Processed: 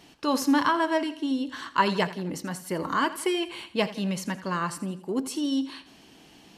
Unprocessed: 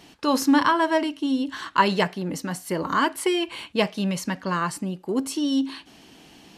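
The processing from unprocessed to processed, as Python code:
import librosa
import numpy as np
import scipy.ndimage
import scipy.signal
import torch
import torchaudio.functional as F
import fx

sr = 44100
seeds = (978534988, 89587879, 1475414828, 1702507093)

y = fx.echo_feedback(x, sr, ms=83, feedback_pct=46, wet_db=-15.5)
y = y * 10.0 ** (-3.5 / 20.0)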